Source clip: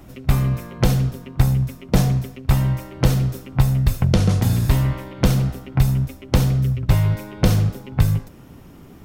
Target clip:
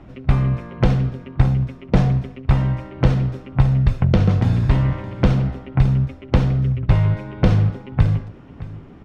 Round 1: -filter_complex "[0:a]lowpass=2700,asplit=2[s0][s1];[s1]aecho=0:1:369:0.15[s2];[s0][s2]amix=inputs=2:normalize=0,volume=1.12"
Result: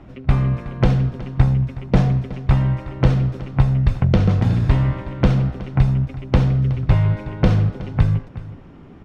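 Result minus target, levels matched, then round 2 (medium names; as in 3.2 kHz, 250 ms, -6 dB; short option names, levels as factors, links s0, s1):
echo 247 ms early
-filter_complex "[0:a]lowpass=2700,asplit=2[s0][s1];[s1]aecho=0:1:616:0.15[s2];[s0][s2]amix=inputs=2:normalize=0,volume=1.12"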